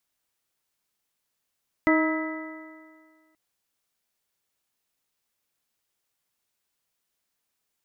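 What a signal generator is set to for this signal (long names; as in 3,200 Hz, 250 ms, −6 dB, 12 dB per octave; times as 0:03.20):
stiff-string partials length 1.48 s, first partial 314 Hz, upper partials −6/−11/−8.5/−19.5/−4.5 dB, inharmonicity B 0.0032, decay 1.83 s, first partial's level −18 dB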